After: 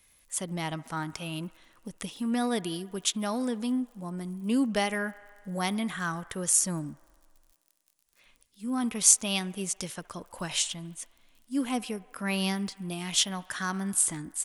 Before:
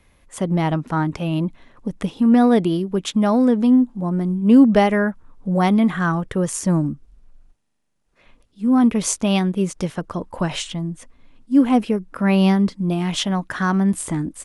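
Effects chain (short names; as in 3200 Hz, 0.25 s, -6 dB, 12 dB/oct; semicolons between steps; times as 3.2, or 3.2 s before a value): crackle 40/s -49 dBFS; pre-emphasis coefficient 0.9; band-limited delay 69 ms, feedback 78%, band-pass 1100 Hz, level -20.5 dB; gain +4.5 dB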